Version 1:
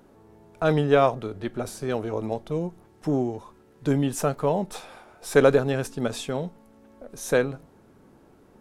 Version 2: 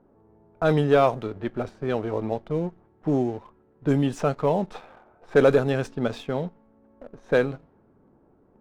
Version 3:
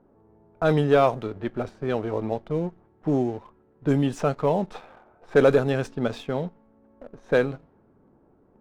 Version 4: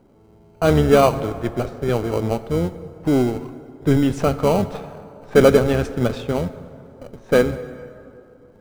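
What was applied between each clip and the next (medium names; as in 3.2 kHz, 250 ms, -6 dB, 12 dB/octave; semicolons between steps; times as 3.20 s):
treble shelf 9.2 kHz -4.5 dB; level-controlled noise filter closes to 1.1 kHz, open at -17.5 dBFS; waveshaping leveller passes 1; trim -2.5 dB
no audible change
octave divider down 1 oct, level -6 dB; in parallel at -9 dB: sample-and-hold 25×; on the sum: plate-style reverb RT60 2.6 s, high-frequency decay 0.55×, DRR 12.5 dB; trim +3 dB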